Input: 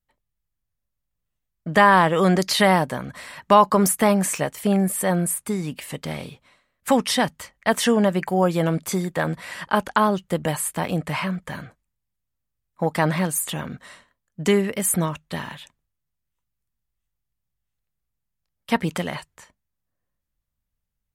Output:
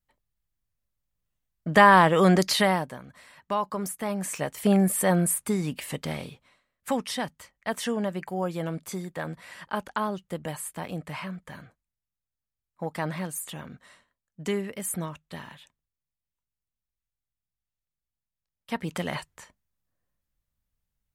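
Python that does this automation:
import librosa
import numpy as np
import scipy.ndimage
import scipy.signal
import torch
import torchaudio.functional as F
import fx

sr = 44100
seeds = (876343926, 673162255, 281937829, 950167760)

y = fx.gain(x, sr, db=fx.line((2.45, -1.0), (3.03, -13.5), (4.03, -13.5), (4.67, -1.0), (5.96, -1.0), (7.08, -10.0), (18.77, -10.0), (19.17, -0.5)))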